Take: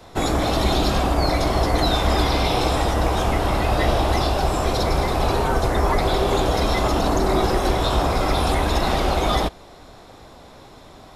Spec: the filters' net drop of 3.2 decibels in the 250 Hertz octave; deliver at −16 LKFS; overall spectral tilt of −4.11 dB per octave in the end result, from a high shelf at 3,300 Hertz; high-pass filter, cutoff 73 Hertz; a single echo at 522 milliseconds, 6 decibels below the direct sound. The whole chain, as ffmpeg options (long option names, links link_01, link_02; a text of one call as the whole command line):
ffmpeg -i in.wav -af "highpass=73,equalizer=frequency=250:width_type=o:gain=-4.5,highshelf=frequency=3300:gain=3.5,aecho=1:1:522:0.501,volume=4.5dB" out.wav